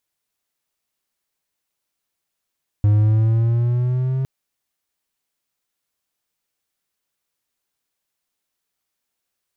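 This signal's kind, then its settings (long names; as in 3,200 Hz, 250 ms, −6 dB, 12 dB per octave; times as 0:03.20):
pitch glide with a swell triangle, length 1.41 s, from 103 Hz, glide +4.5 semitones, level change −7.5 dB, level −9 dB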